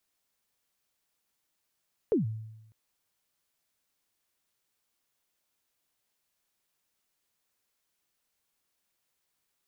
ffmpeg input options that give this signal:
ffmpeg -f lavfi -i "aevalsrc='0.1*pow(10,-3*t/0.96)*sin(2*PI*(490*0.134/log(110/490)*(exp(log(110/490)*min(t,0.134)/0.134)-1)+110*max(t-0.134,0)))':duration=0.6:sample_rate=44100" out.wav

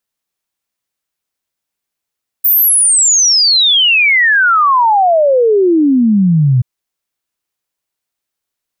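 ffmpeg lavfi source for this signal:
ffmpeg -f lavfi -i "aevalsrc='0.473*clip(min(t,4.18-t)/0.01,0,1)*sin(2*PI*15000*4.18/log(120/15000)*(exp(log(120/15000)*t/4.18)-1))':duration=4.18:sample_rate=44100" out.wav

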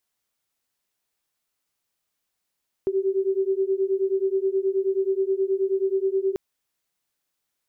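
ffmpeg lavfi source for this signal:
ffmpeg -f lavfi -i "aevalsrc='0.0668*(sin(2*PI*381*t)+sin(2*PI*390.4*t))':duration=3.49:sample_rate=44100" out.wav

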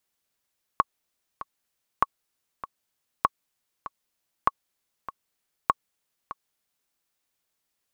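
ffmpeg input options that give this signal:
ffmpeg -f lavfi -i "aevalsrc='pow(10,(-5.5-15.5*gte(mod(t,2*60/98),60/98))/20)*sin(2*PI*1110*mod(t,60/98))*exp(-6.91*mod(t,60/98)/0.03)':duration=6.12:sample_rate=44100" out.wav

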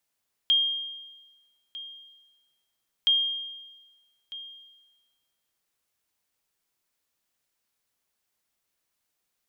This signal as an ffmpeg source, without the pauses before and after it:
ffmpeg -f lavfi -i "aevalsrc='0.158*(sin(2*PI*3220*mod(t,2.57))*exp(-6.91*mod(t,2.57)/1.23)+0.133*sin(2*PI*3220*max(mod(t,2.57)-1.25,0))*exp(-6.91*max(mod(t,2.57)-1.25,0)/1.23))':duration=5.14:sample_rate=44100" out.wav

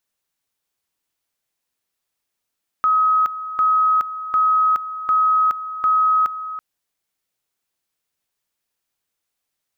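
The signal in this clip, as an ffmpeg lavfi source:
ffmpeg -f lavfi -i "aevalsrc='pow(10,(-13-13*gte(mod(t,0.75),0.42))/20)*sin(2*PI*1270*t)':duration=3.75:sample_rate=44100" out.wav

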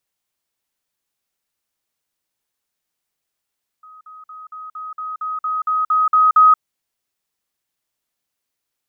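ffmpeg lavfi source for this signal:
ffmpeg -f lavfi -i "aevalsrc='pow(10,(-39.5+3*floor(t/0.23))/20)*sin(2*PI*1260*t)*clip(min(mod(t,0.23),0.18-mod(t,0.23))/0.005,0,1)':duration=2.76:sample_rate=44100" out.wav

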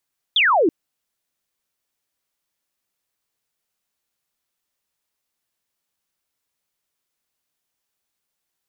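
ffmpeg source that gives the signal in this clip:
ffmpeg -f lavfi -i "aevalsrc='0.224*clip(t/0.002,0,1)*clip((0.33-t)/0.002,0,1)*sin(2*PI*3700*0.33/log(290/3700)*(exp(log(290/3700)*t/0.33)-1))':duration=0.33:sample_rate=44100" out.wav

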